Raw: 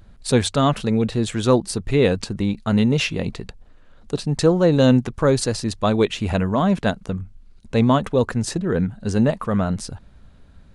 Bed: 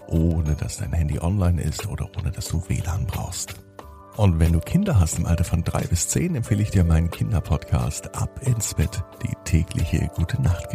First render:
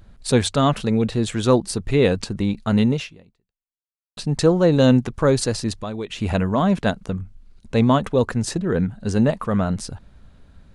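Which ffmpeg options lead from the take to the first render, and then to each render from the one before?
ffmpeg -i in.wav -filter_complex "[0:a]asettb=1/sr,asplit=3[link_01][link_02][link_03];[link_01]atrim=end=5.754[link_04];[link_02]atrim=start=5.75:end=6.21,asetpts=PTS-STARTPTS,afade=type=in:duration=0.004:curve=qsin,afade=type=out:start_time=0.456:duration=0.004:curve=qsin,acompressor=threshold=-28dB:ratio=3:attack=3.2:release=140:knee=1:detection=peak[link_05];[link_03]atrim=start=6.206[link_06];[link_04][link_05]acrossfade=duration=0.004:curve1=hsin:curve2=qsin[link_07];[link_07][link_06]acrossfade=duration=0.004:curve1=qsin:curve2=hsin,asplit=2[link_08][link_09];[link_08]atrim=end=4.17,asetpts=PTS-STARTPTS,afade=type=out:start_time=2.9:duration=1.27:curve=exp[link_10];[link_09]atrim=start=4.17,asetpts=PTS-STARTPTS,afade=type=in:duration=0.004:curve=hsin[link_11];[link_10][link_11]concat=n=2:v=0:a=1" out.wav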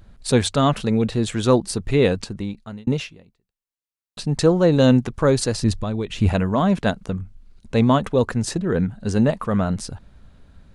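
ffmpeg -i in.wav -filter_complex "[0:a]asettb=1/sr,asplit=3[link_01][link_02][link_03];[link_01]atrim=end=5.624[link_04];[link_02]atrim=start=5.62:end=6.29,asetpts=PTS-STARTPTS,afade=type=in:duration=0.004:curve=qsin,afade=type=out:start_time=0.666:duration=0.004:curve=qsin,lowshelf=frequency=170:gain=11.5[link_05];[link_03]atrim=start=6.286[link_06];[link_04][link_05]acrossfade=duration=0.004:curve1=hsin:curve2=qsin[link_07];[link_07][link_06]acrossfade=duration=0.004:curve1=qsin:curve2=hsin,asplit=2[link_08][link_09];[link_08]atrim=end=2.87,asetpts=PTS-STARTPTS,afade=type=out:start_time=2.02:duration=0.85[link_10];[link_09]atrim=start=2.87,asetpts=PTS-STARTPTS,afade=type=in:duration=0.004:curve=hsin[link_11];[link_10][link_11]concat=n=2:v=0:a=1" out.wav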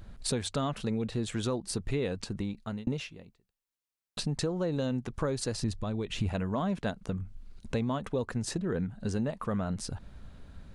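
ffmpeg -i in.wav -af "alimiter=limit=-8.5dB:level=0:latency=1:release=237,acompressor=threshold=-32dB:ratio=3" out.wav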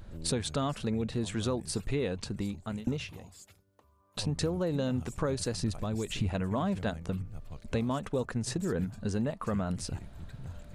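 ffmpeg -i in.wav -i bed.wav -filter_complex "[1:a]volume=-24dB[link_01];[0:a][link_01]amix=inputs=2:normalize=0" out.wav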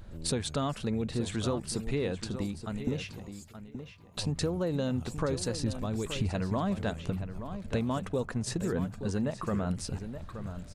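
ffmpeg -i in.wav -filter_complex "[0:a]asplit=2[link_01][link_02];[link_02]adelay=875,lowpass=frequency=3500:poles=1,volume=-10dB,asplit=2[link_03][link_04];[link_04]adelay=875,lowpass=frequency=3500:poles=1,volume=0.16[link_05];[link_01][link_03][link_05]amix=inputs=3:normalize=0" out.wav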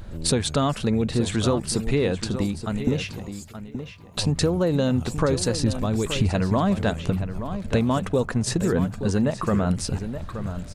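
ffmpeg -i in.wav -af "volume=9dB" out.wav

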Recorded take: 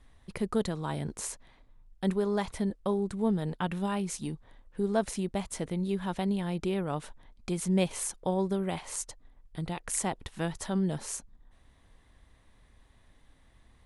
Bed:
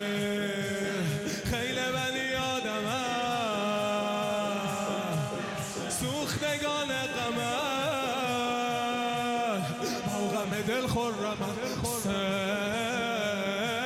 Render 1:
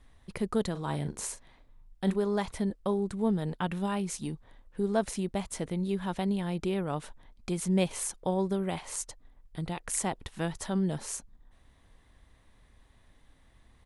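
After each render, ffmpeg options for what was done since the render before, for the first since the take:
ffmpeg -i in.wav -filter_complex "[0:a]asplit=3[link_01][link_02][link_03];[link_01]afade=type=out:start_time=0.74:duration=0.02[link_04];[link_02]asplit=2[link_05][link_06];[link_06]adelay=41,volume=-11dB[link_07];[link_05][link_07]amix=inputs=2:normalize=0,afade=type=in:start_time=0.74:duration=0.02,afade=type=out:start_time=2.14:duration=0.02[link_08];[link_03]afade=type=in:start_time=2.14:duration=0.02[link_09];[link_04][link_08][link_09]amix=inputs=3:normalize=0" out.wav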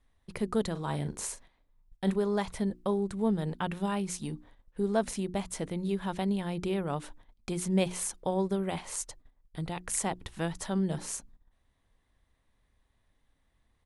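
ffmpeg -i in.wav -af "bandreject=frequency=60:width_type=h:width=6,bandreject=frequency=120:width_type=h:width=6,bandreject=frequency=180:width_type=h:width=6,bandreject=frequency=240:width_type=h:width=6,bandreject=frequency=300:width_type=h:width=6,bandreject=frequency=360:width_type=h:width=6,agate=range=-11dB:threshold=-51dB:ratio=16:detection=peak" out.wav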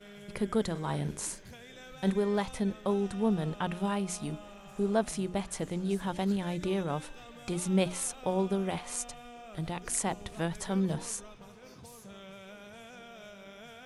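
ffmpeg -i in.wav -i bed.wav -filter_complex "[1:a]volume=-19dB[link_01];[0:a][link_01]amix=inputs=2:normalize=0" out.wav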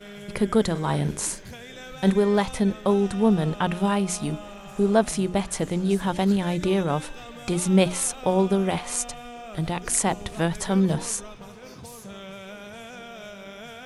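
ffmpeg -i in.wav -af "volume=8.5dB" out.wav

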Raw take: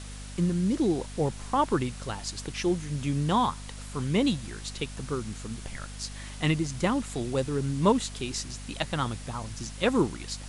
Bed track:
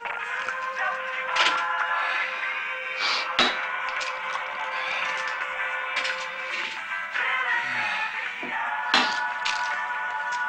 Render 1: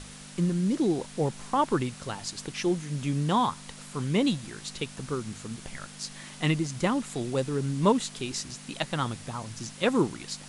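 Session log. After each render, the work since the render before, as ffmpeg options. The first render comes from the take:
ffmpeg -i in.wav -af "bandreject=frequency=50:width_type=h:width=6,bandreject=frequency=100:width_type=h:width=6" out.wav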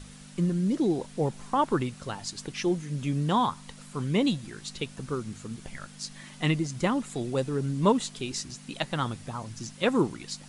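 ffmpeg -i in.wav -af "afftdn=noise_reduction=6:noise_floor=-46" out.wav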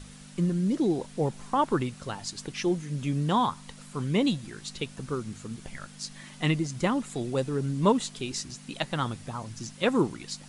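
ffmpeg -i in.wav -af anull out.wav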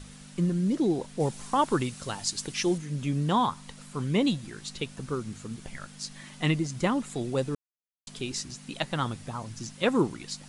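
ffmpeg -i in.wav -filter_complex "[0:a]asettb=1/sr,asplit=3[link_01][link_02][link_03];[link_01]atrim=end=1.204[link_04];[link_02]atrim=start=1.2:end=2.78,asetpts=PTS-STARTPTS,afade=type=in:duration=0.004:curve=qsin,afade=type=out:start_time=1.576:duration=0.004:curve=qsin,highshelf=frequency=3700:gain=9[link_05];[link_03]atrim=start=2.776[link_06];[link_04][link_05]acrossfade=duration=0.004:curve1=hsin:curve2=qsin[link_07];[link_07][link_06]acrossfade=duration=0.004:curve1=qsin:curve2=hsin,asplit=3[link_08][link_09][link_10];[link_08]atrim=end=7.55,asetpts=PTS-STARTPTS,afade=type=out:start_time=7.546:duration=0.004:curve=hsin[link_11];[link_09]atrim=start=7.55:end=8.07,asetpts=PTS-STARTPTS,volume=0[link_12];[link_10]atrim=start=8.07,asetpts=PTS-STARTPTS,afade=type=in:duration=0.004:curve=hsin[link_13];[link_11][link_12][link_13]concat=n=3:v=0:a=1" out.wav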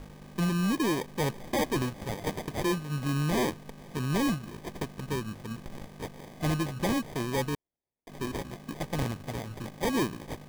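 ffmpeg -i in.wav -af "acrusher=samples=32:mix=1:aa=0.000001,volume=23.5dB,asoftclip=hard,volume=-23.5dB" out.wav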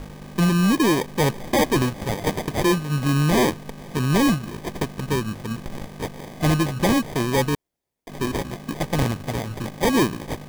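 ffmpeg -i in.wav -af "volume=9dB" out.wav

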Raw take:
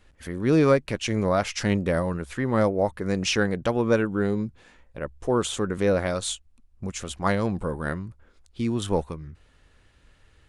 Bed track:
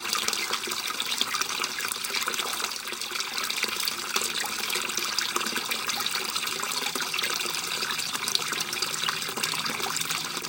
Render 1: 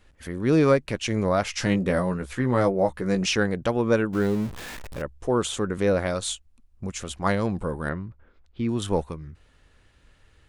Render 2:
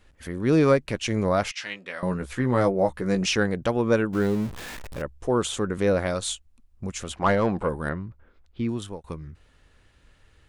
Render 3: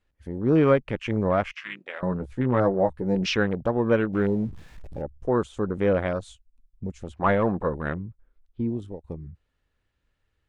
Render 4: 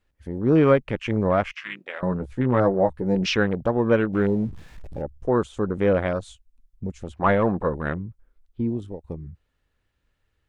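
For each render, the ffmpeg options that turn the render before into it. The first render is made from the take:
ffmpeg -i in.wav -filter_complex "[0:a]asettb=1/sr,asplit=3[link_01][link_02][link_03];[link_01]atrim=end=1.524[link_04];[link_02]atrim=start=1.52:end=3.26,asetpts=PTS-STARTPTS,afade=type=in:duration=0.004:curve=qsin,afade=type=out:start_time=1.736:duration=0.004:curve=qsin,asplit=2[link_05][link_06];[link_06]adelay=16,volume=-5.5dB[link_07];[link_05][link_07]amix=inputs=2:normalize=0,atrim=end_sample=76734[link_08];[link_03]atrim=start=3.256[link_09];[link_04][link_08]acrossfade=duration=0.004:curve1=hsin:curve2=qsin[link_10];[link_10][link_09]acrossfade=duration=0.004:curve1=qsin:curve2=hsin,asettb=1/sr,asplit=3[link_11][link_12][link_13];[link_11]atrim=end=4.134[link_14];[link_12]atrim=start=4.13:end=5.02,asetpts=PTS-STARTPTS,afade=type=in:duration=0.004:curve=qsin,afade=type=out:start_time=0.886:duration=0.004:curve=qsin,aeval=exprs='val(0)+0.5*0.0237*sgn(val(0))':channel_layout=same[link_15];[link_13]atrim=start=5.016[link_16];[link_14][link_15]acrossfade=duration=0.004:curve1=hsin:curve2=qsin[link_17];[link_17][link_16]acrossfade=duration=0.004:curve1=qsin:curve2=hsin,asettb=1/sr,asplit=3[link_18][link_19][link_20];[link_18]atrim=end=7.894[link_21];[link_19]atrim=start=7.89:end=8.69,asetpts=PTS-STARTPTS,afade=type=in:duration=0.004:curve=qsin,afade=type=out:start_time=0.796:duration=0.004:curve=qsin,lowpass=2800[link_22];[link_20]atrim=start=8.686[link_23];[link_21][link_22]acrossfade=duration=0.004:curve1=hsin:curve2=qsin[link_24];[link_24][link_23]acrossfade=duration=0.004:curve1=qsin:curve2=hsin" out.wav
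ffmpeg -i in.wav -filter_complex "[0:a]asettb=1/sr,asplit=3[link_01][link_02][link_03];[link_01]atrim=end=1.514[link_04];[link_02]atrim=start=1.51:end=2.03,asetpts=PTS-STARTPTS,afade=type=in:duration=0.004:curve=qsin,afade=type=out:start_time=0.516:duration=0.004:curve=qsin,bandpass=frequency=2700:width_type=q:width=1.2[link_05];[link_03]atrim=start=2.026[link_06];[link_04][link_05]acrossfade=duration=0.004:curve1=hsin:curve2=qsin[link_07];[link_07][link_06]acrossfade=duration=0.004:curve1=qsin:curve2=hsin,asplit=3[link_08][link_09][link_10];[link_08]afade=type=out:start_time=7.11:duration=0.02[link_11];[link_09]asplit=2[link_12][link_13];[link_13]highpass=frequency=720:poles=1,volume=17dB,asoftclip=type=tanh:threshold=-9dB[link_14];[link_12][link_14]amix=inputs=2:normalize=0,lowpass=frequency=1300:poles=1,volume=-6dB,afade=type=in:start_time=7.11:duration=0.02,afade=type=out:start_time=7.68:duration=0.02[link_15];[link_10]afade=type=in:start_time=7.68:duration=0.02[link_16];[link_11][link_15][link_16]amix=inputs=3:normalize=0,asplit=2[link_17][link_18];[link_17]atrim=end=9.04,asetpts=PTS-STARTPTS,afade=type=out:start_time=8.62:duration=0.42[link_19];[link_18]atrim=start=9.04,asetpts=PTS-STARTPTS,afade=type=in:duration=0.004:curve=hsin[link_20];[link_19][link_20]concat=n=2:v=0:a=1" out.wav
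ffmpeg -i in.wav -af "afwtdn=0.0251,highshelf=frequency=8800:gain=-9.5" out.wav
ffmpeg -i in.wav -af "volume=2dB" out.wav

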